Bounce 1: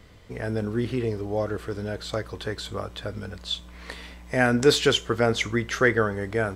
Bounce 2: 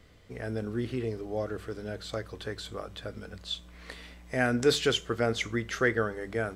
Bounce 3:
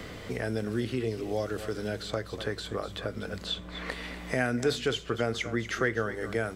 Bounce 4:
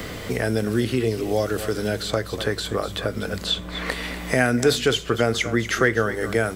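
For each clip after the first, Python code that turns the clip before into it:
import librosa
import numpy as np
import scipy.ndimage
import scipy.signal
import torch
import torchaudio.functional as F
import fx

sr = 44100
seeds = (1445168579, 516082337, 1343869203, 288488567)

y1 = fx.peak_eq(x, sr, hz=950.0, db=-5.0, octaves=0.29)
y1 = fx.hum_notches(y1, sr, base_hz=50, count=4)
y1 = y1 * 10.0 ** (-5.5 / 20.0)
y2 = y1 + 10.0 ** (-15.0 / 20.0) * np.pad(y1, (int(243 * sr / 1000.0), 0))[:len(y1)]
y2 = fx.band_squash(y2, sr, depth_pct=70)
y3 = fx.high_shelf(y2, sr, hz=10000.0, db=11.5)
y3 = y3 * 10.0 ** (8.5 / 20.0)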